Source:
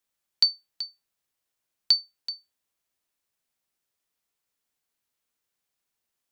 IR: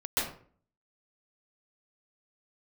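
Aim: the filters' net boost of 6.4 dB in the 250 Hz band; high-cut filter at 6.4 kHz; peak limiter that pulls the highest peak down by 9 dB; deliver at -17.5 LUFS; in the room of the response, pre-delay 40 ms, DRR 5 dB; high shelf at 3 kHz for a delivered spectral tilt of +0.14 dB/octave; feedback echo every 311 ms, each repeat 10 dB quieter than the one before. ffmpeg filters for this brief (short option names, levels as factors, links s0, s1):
-filter_complex "[0:a]lowpass=6400,equalizer=f=250:t=o:g=8,highshelf=f=3000:g=-5,alimiter=limit=0.0794:level=0:latency=1,aecho=1:1:311|622|933|1244:0.316|0.101|0.0324|0.0104,asplit=2[s0][s1];[1:a]atrim=start_sample=2205,adelay=40[s2];[s1][s2]afir=irnorm=-1:irlink=0,volume=0.211[s3];[s0][s3]amix=inputs=2:normalize=0,volume=8.41"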